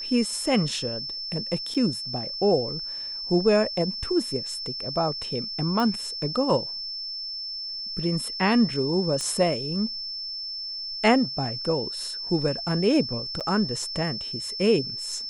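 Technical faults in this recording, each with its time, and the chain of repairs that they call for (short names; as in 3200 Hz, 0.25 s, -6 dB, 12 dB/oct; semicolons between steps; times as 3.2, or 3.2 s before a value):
tone 5300 Hz -31 dBFS
1.74–1.75 gap 6.3 ms
5.8 pop -15 dBFS
9.21 pop -17 dBFS
13.4–13.41 gap 7.4 ms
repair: de-click; notch 5300 Hz, Q 30; interpolate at 1.74, 6.3 ms; interpolate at 13.4, 7.4 ms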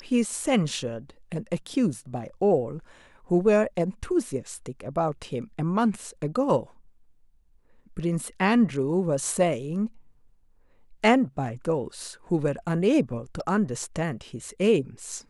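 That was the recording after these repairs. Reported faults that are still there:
9.21 pop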